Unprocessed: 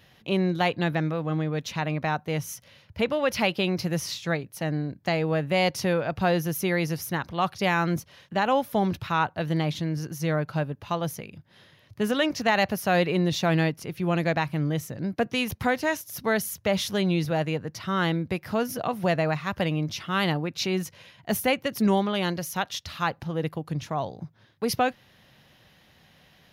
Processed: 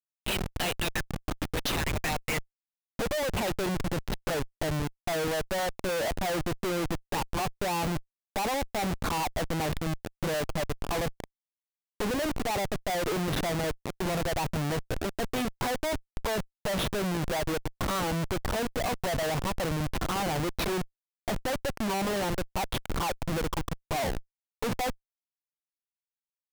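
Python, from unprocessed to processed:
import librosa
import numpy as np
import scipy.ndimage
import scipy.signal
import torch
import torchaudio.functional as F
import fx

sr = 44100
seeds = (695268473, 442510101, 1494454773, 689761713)

y = fx.filter_sweep_bandpass(x, sr, from_hz=3700.0, to_hz=940.0, start_s=1.93, end_s=2.84, q=1.4)
y = fx.env_flanger(y, sr, rest_ms=9.1, full_db=-32.5)
y = fx.schmitt(y, sr, flips_db=-44.5)
y = F.gain(torch.from_numpy(y), 8.0).numpy()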